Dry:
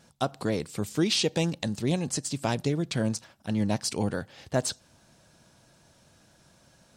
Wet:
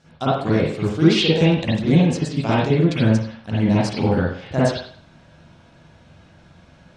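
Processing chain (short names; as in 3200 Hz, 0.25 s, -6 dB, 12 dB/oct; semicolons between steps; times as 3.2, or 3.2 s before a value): LPF 5800 Hz 12 dB/oct; reverb, pre-delay 44 ms, DRR -9.5 dB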